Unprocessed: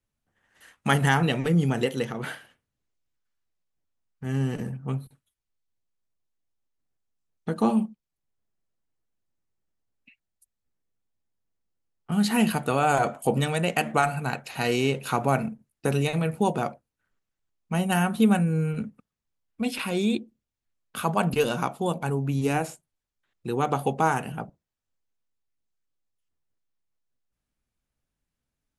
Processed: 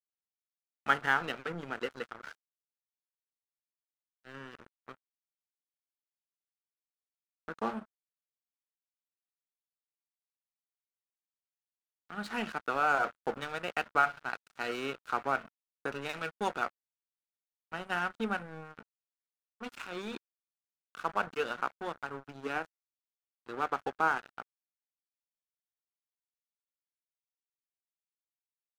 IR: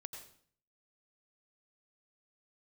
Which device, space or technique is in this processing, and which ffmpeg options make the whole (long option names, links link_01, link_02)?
pocket radio on a weak battery: -filter_complex "[0:a]asettb=1/sr,asplit=3[link_01][link_02][link_03];[link_01]atrim=end=16.094[link_04];[link_02]atrim=start=16.09:end=16.66,asetpts=PTS-STARTPTS,afade=type=in:duration=0.004:curve=qsin,afade=type=out:start_time=0.566:duration=0.004:curve=qsin,highshelf=frequency=2100:gain=11.5[link_05];[link_03]atrim=start=16.656[link_06];[link_04][link_05]acrossfade=duration=0.004:curve1=hsin:curve2=qsin[link_07];[link_07][link_06]acrossfade=duration=0.004:curve1=qsin:curve2=hsin,highpass=300,lowpass=4200,aeval=exprs='sgn(val(0))*max(abs(val(0))-0.02,0)':channel_layout=same,equalizer=frequency=1400:width_type=o:width=0.55:gain=11,volume=-8dB"